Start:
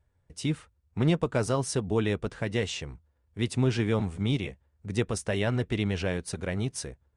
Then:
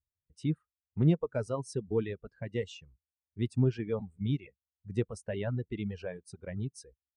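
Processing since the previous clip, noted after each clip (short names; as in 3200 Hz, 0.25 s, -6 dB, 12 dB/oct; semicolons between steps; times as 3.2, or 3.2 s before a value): reverb removal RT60 2 s; spectral expander 1.5:1; gain -1.5 dB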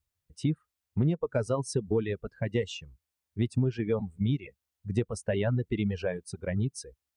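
compressor 6:1, threshold -32 dBFS, peak gain reduction 12 dB; gain +8.5 dB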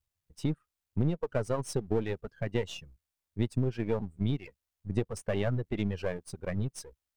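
half-wave gain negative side -7 dB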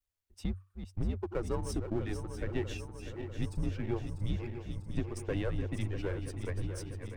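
regenerating reverse delay 0.322 s, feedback 80%, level -9 dB; frequency shift -95 Hz; gain -4 dB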